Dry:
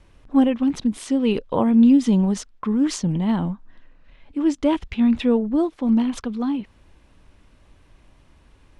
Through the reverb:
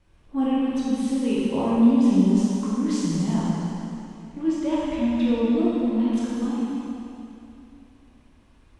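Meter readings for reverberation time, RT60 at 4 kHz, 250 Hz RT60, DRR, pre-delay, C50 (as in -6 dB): 2.9 s, 2.7 s, 3.0 s, -8.0 dB, 7 ms, -4.5 dB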